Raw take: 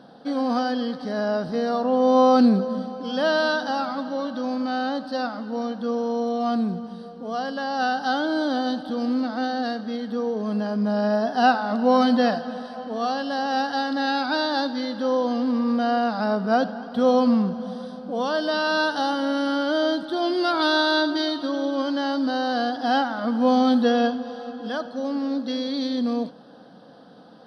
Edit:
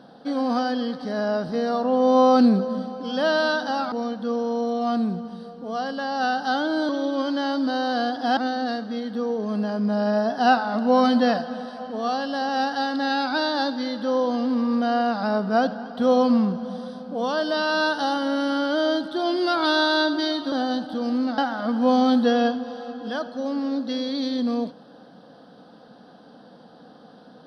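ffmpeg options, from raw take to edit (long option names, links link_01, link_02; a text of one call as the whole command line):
ffmpeg -i in.wav -filter_complex "[0:a]asplit=6[link_01][link_02][link_03][link_04][link_05][link_06];[link_01]atrim=end=3.922[link_07];[link_02]atrim=start=5.508:end=8.482[link_08];[link_03]atrim=start=21.488:end=22.972[link_09];[link_04]atrim=start=9.338:end=21.492[link_10];[link_05]atrim=start=8.478:end=9.342[link_11];[link_06]atrim=start=22.968[link_12];[link_07][link_08]acrossfade=duration=0.004:curve1=hsin:curve2=hsin[link_13];[link_13][link_09]acrossfade=duration=0.004:curve1=hsin:curve2=hsin[link_14];[link_14][link_10]acrossfade=duration=0.004:curve1=hsin:curve2=hsin[link_15];[link_15][link_11]acrossfade=duration=0.004:curve1=hsin:curve2=hsin[link_16];[link_16][link_12]acrossfade=duration=0.004:curve1=hsin:curve2=hsin" out.wav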